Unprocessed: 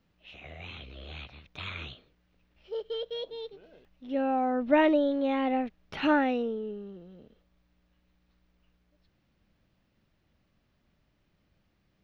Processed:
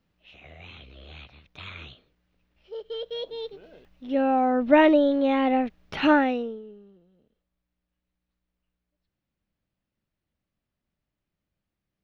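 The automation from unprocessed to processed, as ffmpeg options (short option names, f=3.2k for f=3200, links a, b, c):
-af "volume=5.5dB,afade=t=in:st=2.77:d=0.73:silence=0.421697,afade=t=out:st=6.11:d=0.52:silence=0.237137,afade=t=out:st=6.63:d=0.48:silence=0.501187"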